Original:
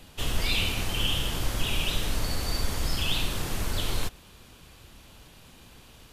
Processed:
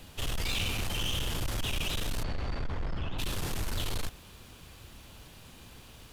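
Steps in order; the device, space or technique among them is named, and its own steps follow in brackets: open-reel tape (soft clip -27.5 dBFS, distortion -10 dB; bell 92 Hz +3 dB 0.81 oct; white noise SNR 36 dB); 2.22–3.18 LPF 2900 Hz -> 1400 Hz 12 dB/oct

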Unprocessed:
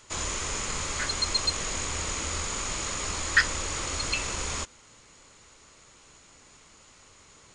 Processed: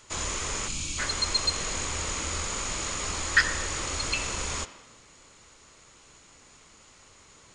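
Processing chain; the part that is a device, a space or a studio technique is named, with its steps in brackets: spectral gain 0.68–0.98, 360–2200 Hz -16 dB; filtered reverb send (on a send: HPF 200 Hz + LPF 4200 Hz + reverb RT60 1.2 s, pre-delay 51 ms, DRR 12 dB)

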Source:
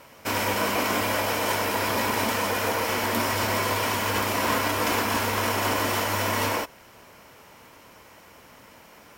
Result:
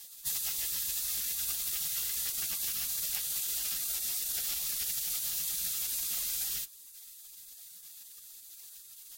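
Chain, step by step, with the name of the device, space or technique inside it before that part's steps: spectral gate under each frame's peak -20 dB weak; ASMR close-microphone chain (low shelf 250 Hz +5 dB; compressor 6:1, threshold -43 dBFS, peak gain reduction 12 dB; high shelf 6300 Hz +8 dB); gain +6 dB

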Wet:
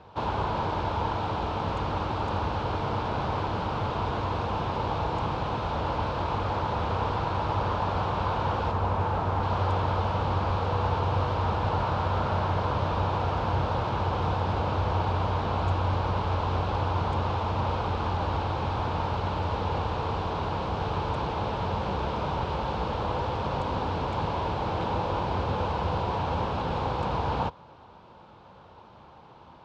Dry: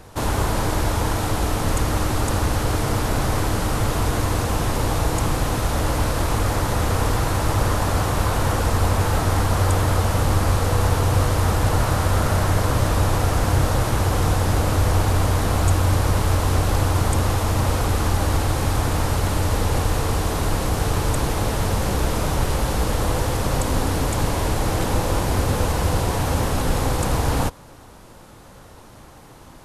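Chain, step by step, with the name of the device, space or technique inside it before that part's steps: 8.71–9.43 bell 4100 Hz -5.5 dB 1.6 oct; guitar cabinet (speaker cabinet 82–3800 Hz, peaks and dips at 120 Hz -4 dB, 280 Hz -7 dB, 920 Hz +7 dB, 1900 Hz -9 dB); gain -5.5 dB

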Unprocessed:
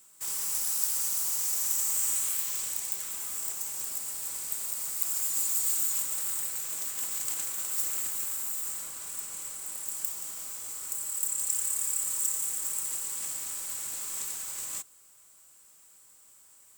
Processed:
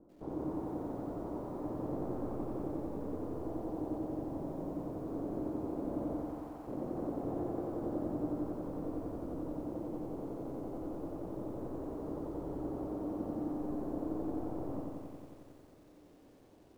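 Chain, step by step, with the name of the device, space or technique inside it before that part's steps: 6.19–6.67 HPF 810 Hz 24 dB/oct; under water (LPF 620 Hz 24 dB/oct; bell 300 Hz +12 dB 0.31 oct); lo-fi delay 90 ms, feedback 80%, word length 14-bit, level -3 dB; gain +14.5 dB

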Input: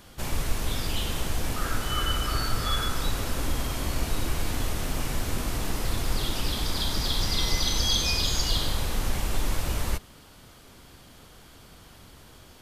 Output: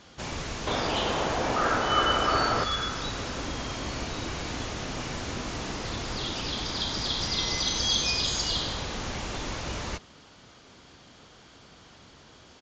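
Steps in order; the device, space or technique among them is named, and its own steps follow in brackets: 0.67–2.64 bell 710 Hz +12 dB 2.6 oct; Bluetooth headset (HPF 140 Hz 6 dB/oct; downsampling 16000 Hz; SBC 64 kbps 16000 Hz)

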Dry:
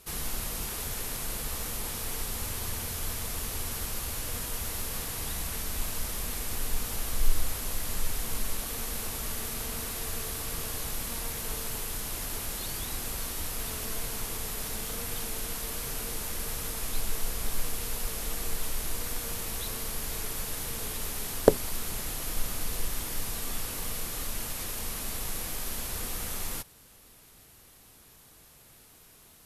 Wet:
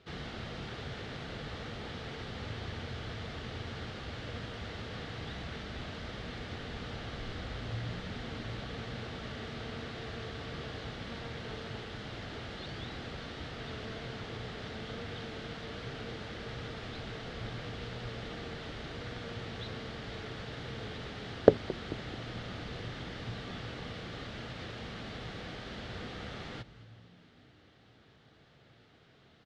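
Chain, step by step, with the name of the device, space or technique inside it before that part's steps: frequency-shifting delay pedal into a guitar cabinet (frequency-shifting echo 0.219 s, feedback 56%, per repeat -64 Hz, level -18.5 dB; speaker cabinet 86–3600 Hz, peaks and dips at 120 Hz +5 dB, 1000 Hz -9 dB, 2500 Hz -6 dB)

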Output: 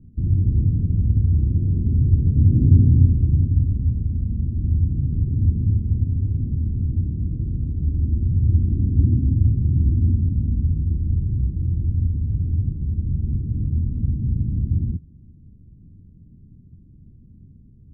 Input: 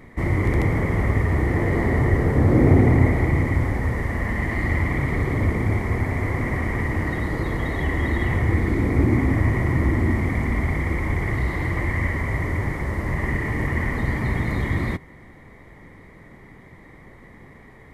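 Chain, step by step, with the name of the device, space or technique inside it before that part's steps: the neighbour's flat through the wall (LPF 230 Hz 24 dB/oct; bell 85 Hz +5.5 dB 0.79 oct); 2.62–3.32 bell 1800 Hz +4 dB

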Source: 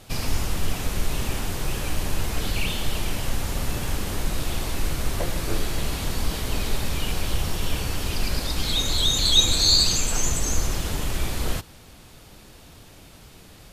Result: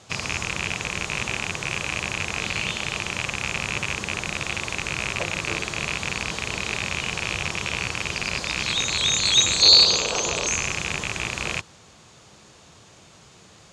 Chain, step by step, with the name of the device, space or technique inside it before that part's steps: car door speaker with a rattle (rattling part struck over -29 dBFS, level -11 dBFS; speaker cabinet 110–8100 Hz, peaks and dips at 270 Hz -7 dB, 1100 Hz +4 dB, 6700 Hz +7 dB); 9.62–10.47 graphic EQ 125/500/1000/2000/4000/8000 Hz -5/+11/+3/-7/+11/-11 dB; gain -1 dB

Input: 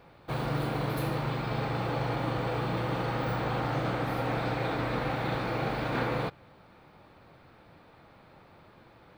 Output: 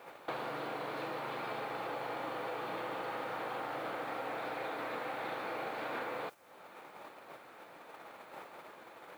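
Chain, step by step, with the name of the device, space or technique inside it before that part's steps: baby monitor (BPF 420–3700 Hz; compressor 8:1, threshold -49 dBFS, peak gain reduction 19.5 dB; white noise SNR 24 dB; gate -57 dBFS, range -7 dB); gain +11.5 dB

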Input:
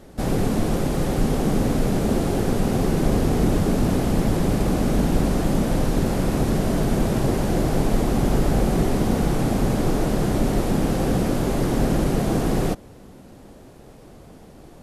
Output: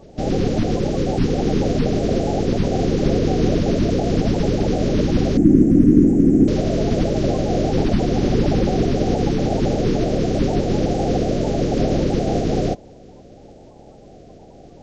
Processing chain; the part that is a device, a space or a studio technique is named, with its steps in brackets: clip after many re-uploads (LPF 6000 Hz 24 dB/oct; bin magnitudes rounded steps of 30 dB); 5.37–6.48 EQ curve 120 Hz 0 dB, 300 Hz +13 dB, 570 Hz -15 dB, 1900 Hz -9 dB, 4200 Hz -27 dB, 8900 Hz +6 dB, 13000 Hz -1 dB; gain +2 dB

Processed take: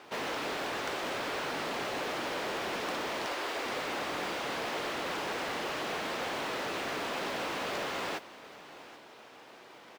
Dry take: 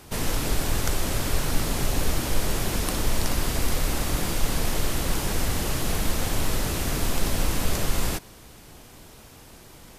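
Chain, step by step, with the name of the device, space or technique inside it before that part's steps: 3.25–3.66 steep high-pass 290 Hz; carbon microphone (BPF 430–3100 Hz; soft clip -29 dBFS, distortion -17 dB; modulation noise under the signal 22 dB); echo 0.78 s -18 dB; gain +1 dB

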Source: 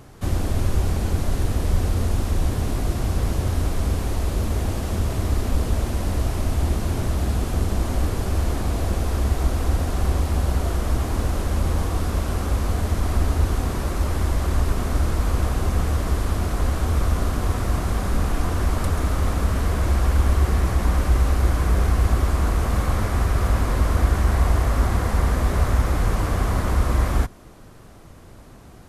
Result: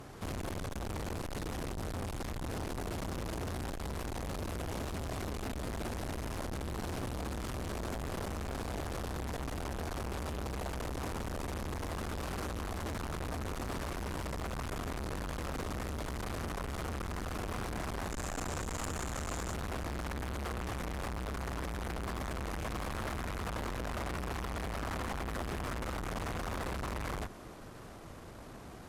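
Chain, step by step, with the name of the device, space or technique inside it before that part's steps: tube preamp driven hard (tube stage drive 33 dB, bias 0.35; low shelf 170 Hz -7 dB; high shelf 6200 Hz -5 dB); 18.1–19.54 bell 7200 Hz +13 dB 0.44 oct; gain +1 dB

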